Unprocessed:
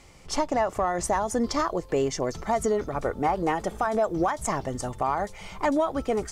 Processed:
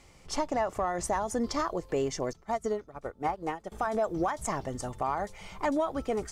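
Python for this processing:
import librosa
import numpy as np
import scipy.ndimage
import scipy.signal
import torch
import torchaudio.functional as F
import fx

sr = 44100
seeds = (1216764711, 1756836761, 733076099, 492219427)

y = fx.upward_expand(x, sr, threshold_db=-33.0, expansion=2.5, at=(2.33, 3.72))
y = y * librosa.db_to_amplitude(-4.5)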